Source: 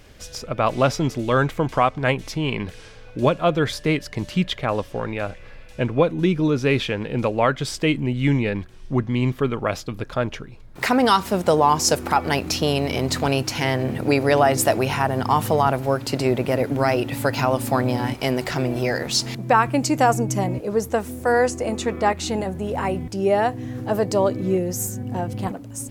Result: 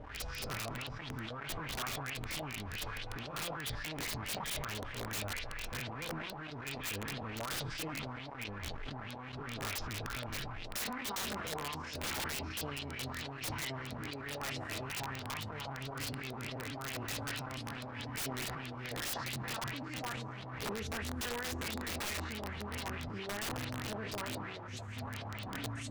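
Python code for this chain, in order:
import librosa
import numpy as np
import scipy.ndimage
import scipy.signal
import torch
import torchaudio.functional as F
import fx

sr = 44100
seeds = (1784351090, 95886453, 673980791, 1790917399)

p1 = fx.spec_steps(x, sr, hold_ms=100)
p2 = 10.0 ** (-21.0 / 20.0) * np.tanh(p1 / 10.0 ** (-21.0 / 20.0))
p3 = p1 + (p2 * 10.0 ** (-6.5 / 20.0))
p4 = fx.tone_stack(p3, sr, knobs='6-0-2')
p5 = fx.chopper(p4, sr, hz=7.1, depth_pct=60, duty_pct=15)
p6 = fx.over_compress(p5, sr, threshold_db=-54.0, ratio=-1.0)
p7 = fx.quant_dither(p6, sr, seeds[0], bits=10, dither='none')
p8 = fx.filter_lfo_lowpass(p7, sr, shape='saw_up', hz=4.6, low_hz=570.0, high_hz=4400.0, q=3.4)
p9 = fx.low_shelf(p8, sr, hz=390.0, db=-9.5)
p10 = fx.notch_comb(p9, sr, f0_hz=180.0)
p11 = p10 + fx.echo_feedback(p10, sr, ms=192, feedback_pct=41, wet_db=-23.5, dry=0)
p12 = (np.mod(10.0 ** (49.5 / 20.0) * p11 + 1.0, 2.0) - 1.0) / 10.0 ** (49.5 / 20.0)
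p13 = fx.sustainer(p12, sr, db_per_s=26.0)
y = p13 * 10.0 ** (17.0 / 20.0)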